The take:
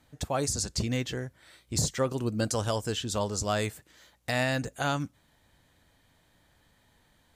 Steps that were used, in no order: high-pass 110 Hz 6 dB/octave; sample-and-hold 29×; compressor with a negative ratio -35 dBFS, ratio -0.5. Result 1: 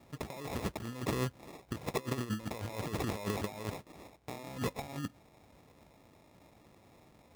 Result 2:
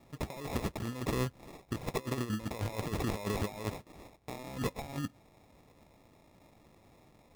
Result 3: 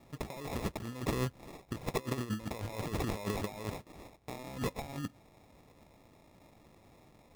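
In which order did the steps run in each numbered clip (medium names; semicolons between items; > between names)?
compressor with a negative ratio > sample-and-hold > high-pass; high-pass > compressor with a negative ratio > sample-and-hold; compressor with a negative ratio > high-pass > sample-and-hold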